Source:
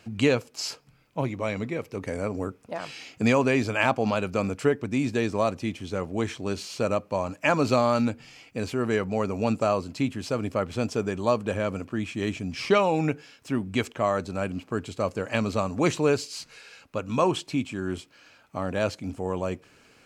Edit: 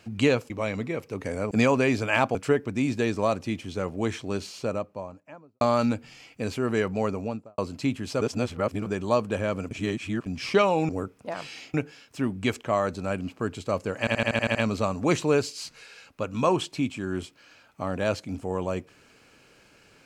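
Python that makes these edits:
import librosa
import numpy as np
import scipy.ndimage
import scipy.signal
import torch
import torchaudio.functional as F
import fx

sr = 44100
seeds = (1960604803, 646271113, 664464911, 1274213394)

y = fx.studio_fade_out(x, sr, start_s=6.36, length_s=1.41)
y = fx.studio_fade_out(y, sr, start_s=9.18, length_s=0.56)
y = fx.edit(y, sr, fx.cut(start_s=0.5, length_s=0.82),
    fx.move(start_s=2.33, length_s=0.85, to_s=13.05),
    fx.cut(start_s=4.02, length_s=0.49),
    fx.reverse_span(start_s=10.37, length_s=0.65),
    fx.reverse_span(start_s=11.87, length_s=0.55),
    fx.stutter(start_s=15.3, slice_s=0.08, count=8), tone=tone)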